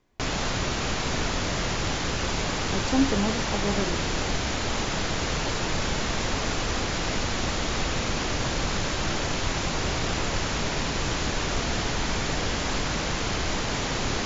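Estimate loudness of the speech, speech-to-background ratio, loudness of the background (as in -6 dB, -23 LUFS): -29.0 LUFS, -1.5 dB, -27.5 LUFS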